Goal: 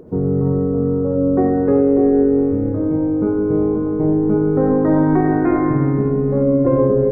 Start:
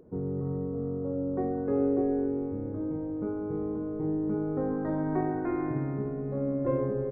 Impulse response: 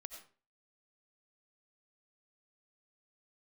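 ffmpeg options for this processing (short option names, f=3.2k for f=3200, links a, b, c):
-filter_complex "[0:a]asetnsamples=n=441:p=0,asendcmd='6.43 highshelf g -12',highshelf=f=2.1k:g=-3[a];[1:a]atrim=start_sample=2205[b];[a][b]afir=irnorm=-1:irlink=0,alimiter=level_in=25dB:limit=-1dB:release=50:level=0:latency=1,volume=-5dB"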